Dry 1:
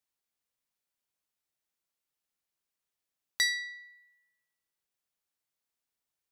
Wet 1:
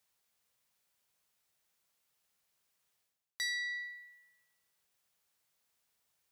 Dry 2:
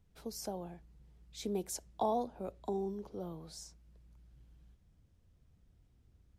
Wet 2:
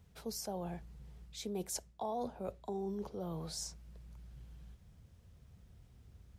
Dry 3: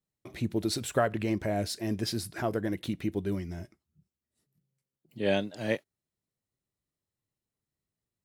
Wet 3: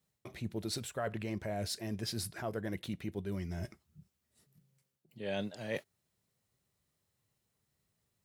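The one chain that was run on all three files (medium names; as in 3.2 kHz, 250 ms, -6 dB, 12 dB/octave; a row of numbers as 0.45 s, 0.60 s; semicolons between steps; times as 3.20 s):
high-pass 46 Hz; peaking EQ 300 Hz -6.5 dB 0.5 oct; reverse; compression 4:1, threshold -47 dBFS; reverse; trim +9 dB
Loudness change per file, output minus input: -6.5 LU, -2.0 LU, -7.5 LU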